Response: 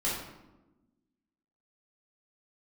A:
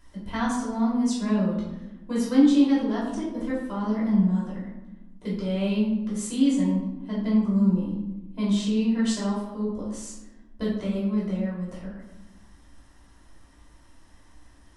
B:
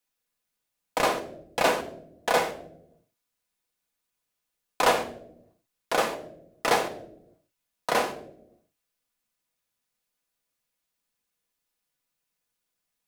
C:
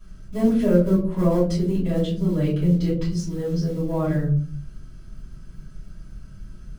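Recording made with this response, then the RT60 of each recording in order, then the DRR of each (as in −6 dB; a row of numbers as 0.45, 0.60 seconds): A; 1.1, 0.80, 0.50 seconds; −8.0, 2.5, −12.0 decibels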